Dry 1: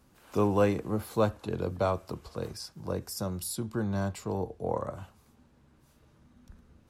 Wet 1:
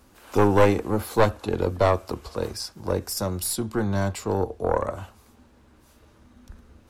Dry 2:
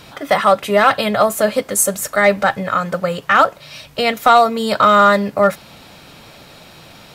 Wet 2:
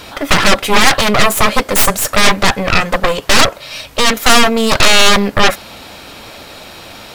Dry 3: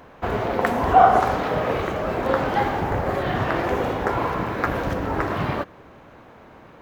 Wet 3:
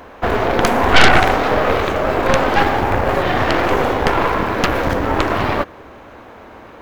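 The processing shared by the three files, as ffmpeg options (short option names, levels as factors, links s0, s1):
-af "equalizer=f=150:t=o:w=0.58:g=-11.5,aeval=exprs='0.891*(cos(1*acos(clip(val(0)/0.891,-1,1)))-cos(1*PI/2))+0.178*(cos(3*acos(clip(val(0)/0.891,-1,1)))-cos(3*PI/2))+0.282*(cos(6*acos(clip(val(0)/0.891,-1,1)))-cos(6*PI/2))+0.224*(cos(7*acos(clip(val(0)/0.891,-1,1)))-cos(7*PI/2))':c=same,aeval=exprs='1.12*sin(PI/2*1.58*val(0)/1.12)':c=same,volume=0.794"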